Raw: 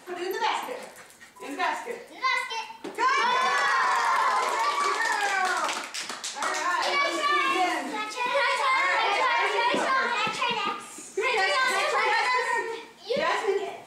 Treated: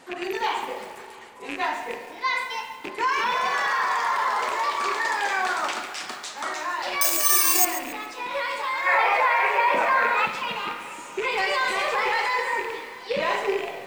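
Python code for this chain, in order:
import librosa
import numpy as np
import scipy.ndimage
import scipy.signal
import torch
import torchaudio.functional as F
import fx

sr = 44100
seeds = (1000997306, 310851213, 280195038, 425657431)

y = fx.rattle_buzz(x, sr, strikes_db=-42.0, level_db=-20.0)
y = fx.high_shelf(y, sr, hz=8700.0, db=-9.0)
y = fx.rev_spring(y, sr, rt60_s=3.1, pass_ms=(34, 39), chirp_ms=50, drr_db=10.0)
y = fx.spec_box(y, sr, start_s=8.86, length_s=1.4, low_hz=420.0, high_hz=2700.0, gain_db=9)
y = fx.echo_feedback(y, sr, ms=676, feedback_pct=46, wet_db=-21)
y = fx.resample_bad(y, sr, factor=6, down='none', up='zero_stuff', at=(7.01, 7.65))
y = fx.rider(y, sr, range_db=4, speed_s=2.0)
y = fx.echo_crushed(y, sr, ms=138, feedback_pct=35, bits=6, wet_db=-13)
y = y * 10.0 ** (-3.5 / 20.0)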